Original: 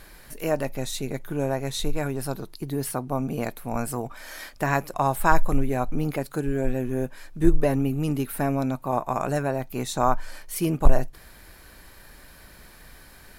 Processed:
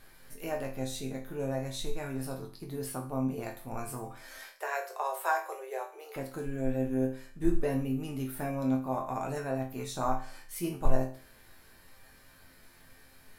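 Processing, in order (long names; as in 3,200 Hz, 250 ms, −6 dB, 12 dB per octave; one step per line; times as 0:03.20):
0:04.38–0:06.16: Butterworth high-pass 370 Hz 96 dB per octave
resonators tuned to a chord F2 major, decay 0.4 s
level +5.5 dB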